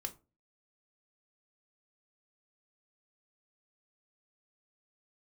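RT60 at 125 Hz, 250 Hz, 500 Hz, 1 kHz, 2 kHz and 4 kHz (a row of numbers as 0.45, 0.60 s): 0.45, 0.40, 0.35, 0.30, 0.20, 0.15 s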